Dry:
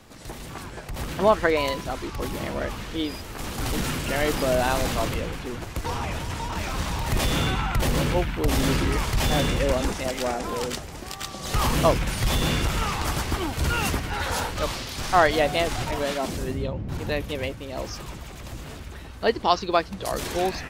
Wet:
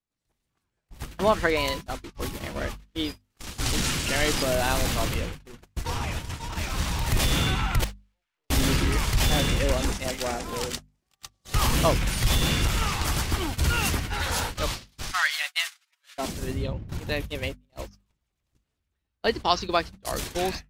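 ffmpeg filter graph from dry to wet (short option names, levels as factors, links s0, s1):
-filter_complex "[0:a]asettb=1/sr,asplit=3[s0][s1][s2];[s0]atrim=end=3.304[s3];[s1]atrim=start=3.3:end=4.43,asetpts=PTS-STARTPTS,afade=t=in:d=0.004:c=qsin,afade=t=out:st=1.126:d=0.004:c=qsin,acrossover=split=8900[s4][s5];[s5]acompressor=threshold=0.00251:ratio=4:attack=1:release=60[s6];[s4][s6]amix=inputs=2:normalize=0,highshelf=f=3400:g=7[s7];[s2]atrim=start=4.426[s8];[s3][s7]acrossfade=d=0.004:c1=hsin:c2=qsin[s9];[s9][s8]acrossfade=d=0.004:c1=qsin:c2=hsin,asettb=1/sr,asplit=3[s10][s11][s12];[s10]atrim=end=7.844[s13];[s11]atrim=start=7.84:end=8.5,asetpts=PTS-STARTPTS,afade=t=in:d=0.004:c=qsin,afade=t=out:st=0.656:d=0.004:c=qsin,highpass=690,lowpass=6400,aeval=exprs='(tanh(89.1*val(0)+0.4)-tanh(0.4))/89.1':c=same[s14];[s12]atrim=start=8.496[s15];[s13][s14]acrossfade=d=0.004:c1=hsin:c2=qsin[s16];[s16][s15]acrossfade=d=0.004:c1=qsin:c2=hsin,asettb=1/sr,asplit=3[s17][s18][s19];[s17]atrim=end=15.114[s20];[s18]atrim=start=15.11:end=16.18,asetpts=PTS-STARTPTS,afade=t=in:d=0.004:c=qsin,afade=t=out:st=1.066:d=0.004:c=qsin,highpass=f=1300:w=0.5412,highpass=f=1300:w=1.3066,aecho=1:1:7:0.43,atrim=end_sample=47187[s21];[s19]atrim=start=16.176[s22];[s20][s21]acrossfade=d=0.004:c1=hsin:c2=qsin[s23];[s23][s22]acrossfade=d=0.004:c1=qsin:c2=hsin,agate=range=0.00794:threshold=0.0355:ratio=16:detection=peak,equalizer=f=590:w=0.39:g=-6,bandreject=f=50:t=h:w=6,bandreject=f=100:t=h:w=6,bandreject=f=150:t=h:w=6,bandreject=f=200:t=h:w=6,bandreject=f=250:t=h:w=6,volume=1.33"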